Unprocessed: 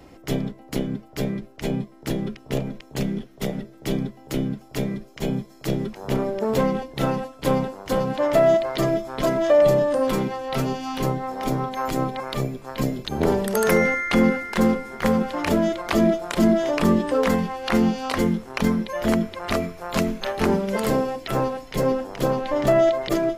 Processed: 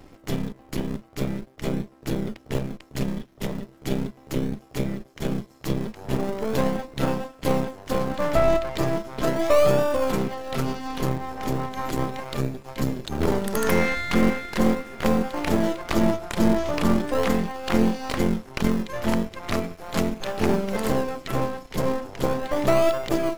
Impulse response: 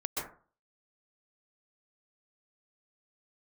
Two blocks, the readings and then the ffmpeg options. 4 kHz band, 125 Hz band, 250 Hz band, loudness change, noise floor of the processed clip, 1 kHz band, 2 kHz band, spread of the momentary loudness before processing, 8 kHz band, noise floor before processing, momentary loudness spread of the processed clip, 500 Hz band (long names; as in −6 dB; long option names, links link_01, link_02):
−1.5 dB, −1.0 dB, −2.0 dB, −2.5 dB, −52 dBFS, −2.0 dB, −2.5 dB, 10 LU, −1.0 dB, −47 dBFS, 9 LU, −3.0 dB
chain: -filter_complex "[0:a]aeval=exprs='if(lt(val(0),0),0.251*val(0),val(0))':channel_layout=same,asplit=2[link_01][link_02];[link_02]acrusher=samples=42:mix=1:aa=0.000001:lfo=1:lforange=42:lforate=0.38,volume=-10dB[link_03];[link_01][link_03]amix=inputs=2:normalize=0"